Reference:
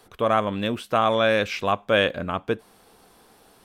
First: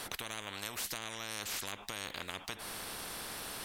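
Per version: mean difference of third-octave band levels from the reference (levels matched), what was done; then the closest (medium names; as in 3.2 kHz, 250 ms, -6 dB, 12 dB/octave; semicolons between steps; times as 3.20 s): 18.5 dB: compression, threshold -25 dBFS, peak gain reduction 10 dB; spectrum-flattening compressor 10:1; trim -5.5 dB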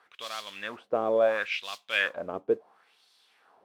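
8.0 dB: modulation noise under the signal 16 dB; LFO band-pass sine 0.72 Hz 400–4200 Hz; trim +1.5 dB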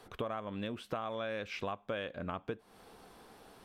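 6.0 dB: treble shelf 5.5 kHz -8.5 dB; compression 10:1, threshold -34 dBFS, peak gain reduction 18.5 dB; trim -1 dB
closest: third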